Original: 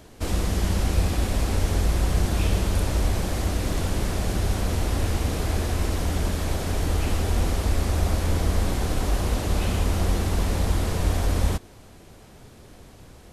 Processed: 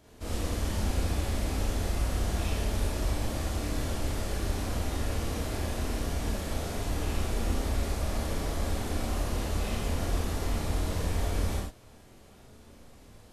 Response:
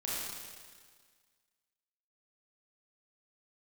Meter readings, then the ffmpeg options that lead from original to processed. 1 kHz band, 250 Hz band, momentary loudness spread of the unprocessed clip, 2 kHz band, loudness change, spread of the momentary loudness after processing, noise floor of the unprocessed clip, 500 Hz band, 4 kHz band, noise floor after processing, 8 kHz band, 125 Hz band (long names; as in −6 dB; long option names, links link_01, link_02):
−5.5 dB, −6.0 dB, 3 LU, −5.5 dB, −7.0 dB, 2 LU, −48 dBFS, −5.5 dB, −5.5 dB, −53 dBFS, −5.5 dB, −7.5 dB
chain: -filter_complex "[1:a]atrim=start_sample=2205,atrim=end_sample=6174[link_01];[0:a][link_01]afir=irnorm=-1:irlink=0,volume=-8dB"